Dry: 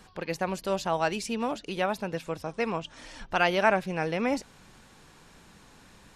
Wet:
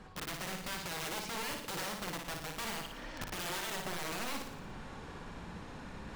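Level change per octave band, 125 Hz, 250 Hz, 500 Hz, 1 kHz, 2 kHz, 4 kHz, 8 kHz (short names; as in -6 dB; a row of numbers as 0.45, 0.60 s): -8.0, -12.0, -15.5, -11.5, -9.0, -2.0, +1.5 dB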